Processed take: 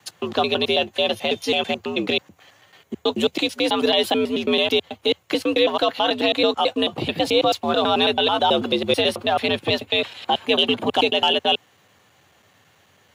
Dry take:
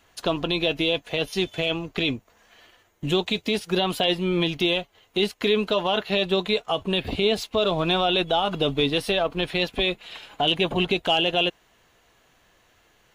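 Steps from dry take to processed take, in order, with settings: slices played last to first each 109 ms, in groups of 2; frequency shift +74 Hz; trim +3.5 dB

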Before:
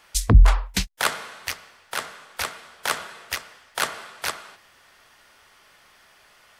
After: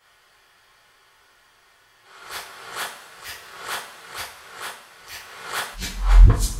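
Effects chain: reverse the whole clip; two-slope reverb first 0.37 s, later 2.3 s, from -18 dB, DRR -8.5 dB; attacks held to a fixed rise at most 120 dB/s; trim -11 dB

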